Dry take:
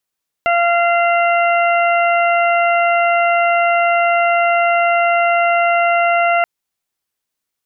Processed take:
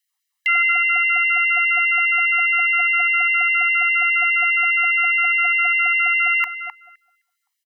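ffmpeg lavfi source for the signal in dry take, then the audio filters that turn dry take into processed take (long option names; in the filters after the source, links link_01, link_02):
-f lavfi -i "aevalsrc='0.224*sin(2*PI*689*t)+0.126*sin(2*PI*1378*t)+0.1*sin(2*PI*2067*t)+0.075*sin(2*PI*2756*t)':duration=5.98:sample_rate=44100"
-filter_complex "[0:a]aecho=1:1:1:0.76,asplit=2[link_01][link_02];[link_02]adelay=258,lowpass=frequency=910:poles=1,volume=-4.5dB,asplit=2[link_03][link_04];[link_04]adelay=258,lowpass=frequency=910:poles=1,volume=0.31,asplit=2[link_05][link_06];[link_06]adelay=258,lowpass=frequency=910:poles=1,volume=0.31,asplit=2[link_07][link_08];[link_08]adelay=258,lowpass=frequency=910:poles=1,volume=0.31[link_09];[link_03][link_05][link_07][link_09]amix=inputs=4:normalize=0[link_10];[link_01][link_10]amix=inputs=2:normalize=0,afftfilt=real='re*gte(b*sr/1024,730*pow(1700/730,0.5+0.5*sin(2*PI*4.9*pts/sr)))':imag='im*gte(b*sr/1024,730*pow(1700/730,0.5+0.5*sin(2*PI*4.9*pts/sr)))':win_size=1024:overlap=0.75"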